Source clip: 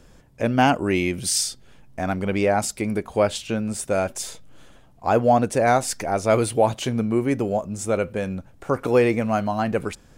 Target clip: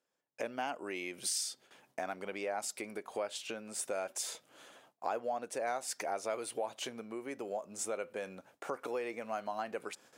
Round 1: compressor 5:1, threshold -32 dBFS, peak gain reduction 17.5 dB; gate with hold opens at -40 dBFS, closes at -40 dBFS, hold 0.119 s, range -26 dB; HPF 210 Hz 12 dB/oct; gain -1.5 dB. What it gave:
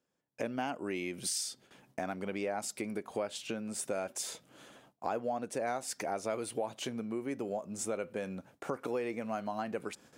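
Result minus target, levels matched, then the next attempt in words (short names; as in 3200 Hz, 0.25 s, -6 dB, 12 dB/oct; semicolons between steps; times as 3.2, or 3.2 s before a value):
250 Hz band +6.0 dB
compressor 5:1, threshold -32 dBFS, peak gain reduction 17.5 dB; gate with hold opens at -40 dBFS, closes at -40 dBFS, hold 0.119 s, range -26 dB; HPF 440 Hz 12 dB/oct; gain -1.5 dB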